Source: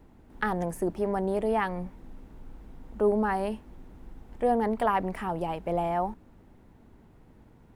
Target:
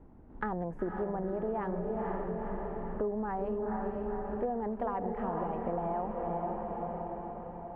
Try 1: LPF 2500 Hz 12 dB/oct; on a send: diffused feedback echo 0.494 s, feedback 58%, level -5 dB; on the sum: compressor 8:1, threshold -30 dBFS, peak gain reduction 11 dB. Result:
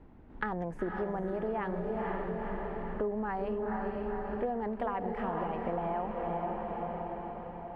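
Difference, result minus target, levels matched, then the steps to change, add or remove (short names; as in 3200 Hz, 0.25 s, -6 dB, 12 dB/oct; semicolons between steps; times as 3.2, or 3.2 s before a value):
2000 Hz band +5.0 dB
change: LPF 1200 Hz 12 dB/oct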